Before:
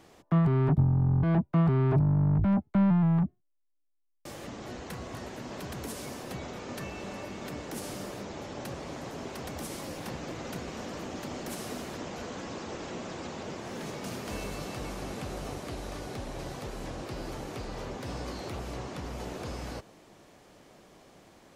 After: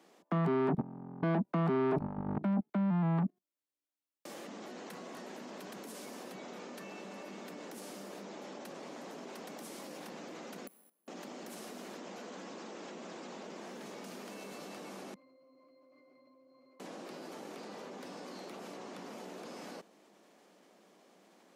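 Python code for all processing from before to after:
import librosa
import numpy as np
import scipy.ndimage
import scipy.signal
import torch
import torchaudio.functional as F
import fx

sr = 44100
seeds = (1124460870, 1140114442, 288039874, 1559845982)

y = fx.chain(x, sr, fx.resample_bad(factor=4, down='filtered', up='zero_stuff'),
    fx.gate_flip(shuts_db=-27.0, range_db=-32),
    fx.band_widen(depth_pct=40), at=(10.67, 11.08))
y = fx.chain(y, sr, fx.highpass(hz=300.0, slope=12),
    fx.octave_resonator(note='C', decay_s=0.44), at=(15.14, 16.8))
y = scipy.signal.sosfilt(scipy.signal.ellip(4, 1.0, 80, 190.0, 'highpass', fs=sr, output='sos'), y)
y = fx.level_steps(y, sr, step_db=17)
y = F.gain(torch.from_numpy(y), 4.5).numpy()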